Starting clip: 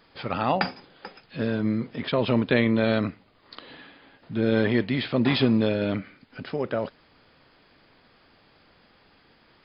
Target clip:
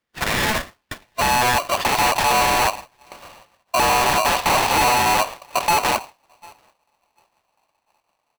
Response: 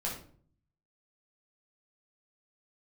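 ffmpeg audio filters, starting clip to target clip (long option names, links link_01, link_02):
-filter_complex "[0:a]aeval=exprs='(mod(11.9*val(0)+1,2)-1)/11.9':channel_layout=same,acompressor=threshold=-28dB:ratio=2.5,equalizer=frequency=840:width=0.86:gain=9,asetrate=50715,aresample=44100,asubboost=boost=9:cutoff=230,bandreject=frequency=50:width_type=h:width=6,bandreject=frequency=100:width_type=h:width=6,bandreject=frequency=150:width_type=h:width=6,asplit=2[link_01][link_02];[link_02]aecho=0:1:738|1476|2214:0.0841|0.0328|0.0128[link_03];[link_01][link_03]amix=inputs=2:normalize=0,acrossover=split=3800[link_04][link_05];[link_05]acompressor=threshold=-55dB:ratio=4:attack=1:release=60[link_06];[link_04][link_06]amix=inputs=2:normalize=0,agate=range=-33dB:threshold=-31dB:ratio=3:detection=peak,aresample=11025,volume=21dB,asoftclip=hard,volume=-21dB,aresample=44100,aeval=exprs='val(0)*sgn(sin(2*PI*860*n/s))':channel_layout=same,volume=7dB"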